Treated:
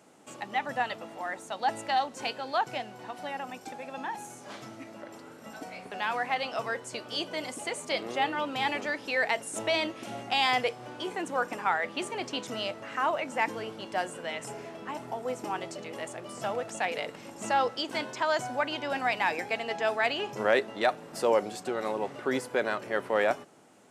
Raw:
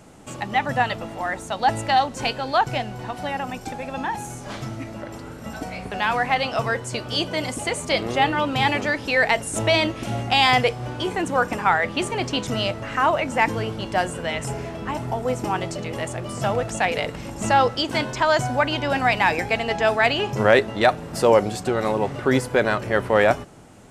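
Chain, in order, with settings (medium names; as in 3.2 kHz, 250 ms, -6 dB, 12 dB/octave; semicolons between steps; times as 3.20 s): high-pass 250 Hz 12 dB/octave; trim -8.5 dB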